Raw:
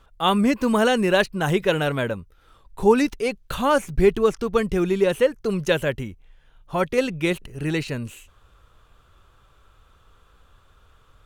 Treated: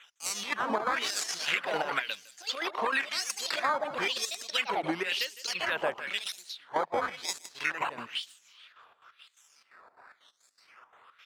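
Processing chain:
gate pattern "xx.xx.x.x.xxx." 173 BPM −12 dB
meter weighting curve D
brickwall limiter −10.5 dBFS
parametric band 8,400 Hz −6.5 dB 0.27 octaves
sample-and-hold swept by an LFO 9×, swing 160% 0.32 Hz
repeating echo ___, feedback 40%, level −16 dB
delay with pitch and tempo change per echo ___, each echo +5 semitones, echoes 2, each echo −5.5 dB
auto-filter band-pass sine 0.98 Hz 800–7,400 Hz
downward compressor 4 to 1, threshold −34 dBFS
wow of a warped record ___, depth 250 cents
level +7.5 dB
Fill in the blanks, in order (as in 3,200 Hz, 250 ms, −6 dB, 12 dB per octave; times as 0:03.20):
157 ms, 408 ms, 33 1/3 rpm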